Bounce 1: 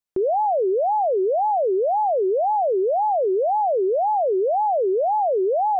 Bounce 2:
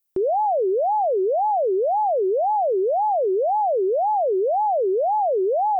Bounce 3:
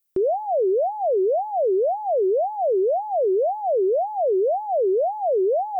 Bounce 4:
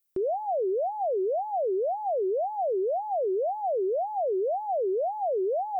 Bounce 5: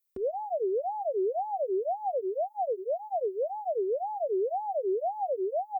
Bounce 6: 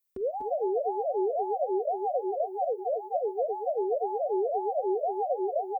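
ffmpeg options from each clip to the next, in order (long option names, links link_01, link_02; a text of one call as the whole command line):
ffmpeg -i in.wav -af "aemphasis=mode=production:type=50fm" out.wav
ffmpeg -i in.wav -af "equalizer=frequency=850:width_type=o:width=0.2:gain=-12,volume=1dB" out.wav
ffmpeg -i in.wav -af "alimiter=limit=-21dB:level=0:latency=1:release=178,volume=-2.5dB" out.wav
ffmpeg -i in.wav -filter_complex "[0:a]asplit=2[link_01][link_02];[link_02]adelay=2.5,afreqshift=1.6[link_03];[link_01][link_03]amix=inputs=2:normalize=1" out.wav
ffmpeg -i in.wav -af "aecho=1:1:45|242|249:0.106|0.316|0.501" out.wav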